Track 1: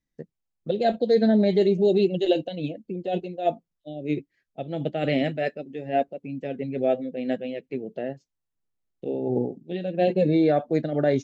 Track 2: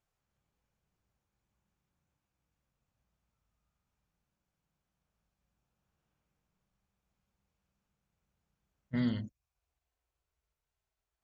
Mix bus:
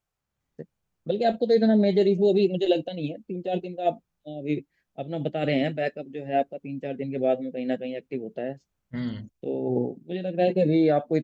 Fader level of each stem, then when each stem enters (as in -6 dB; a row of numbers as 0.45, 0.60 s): -0.5, +0.5 dB; 0.40, 0.00 s